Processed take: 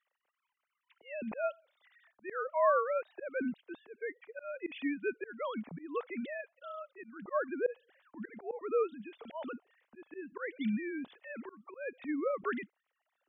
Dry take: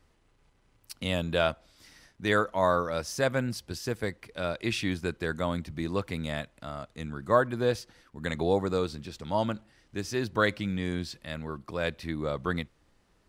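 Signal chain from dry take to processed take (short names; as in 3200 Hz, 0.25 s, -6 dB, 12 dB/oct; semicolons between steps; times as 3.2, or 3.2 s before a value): sine-wave speech; auto swell 0.236 s; gain -2.5 dB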